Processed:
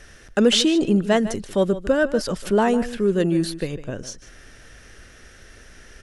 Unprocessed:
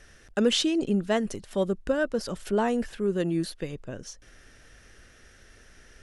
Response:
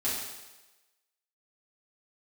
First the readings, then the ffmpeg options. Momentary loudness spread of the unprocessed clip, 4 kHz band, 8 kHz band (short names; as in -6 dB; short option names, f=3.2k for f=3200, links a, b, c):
13 LU, +7.0 dB, +7.0 dB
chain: -filter_complex "[0:a]asplit=2[a][b];[b]asoftclip=type=tanh:threshold=-21dB,volume=-11dB[c];[a][c]amix=inputs=2:normalize=0,asplit=2[d][e];[e]adelay=151.6,volume=-14dB,highshelf=f=4k:g=-3.41[f];[d][f]amix=inputs=2:normalize=0,volume=5dB"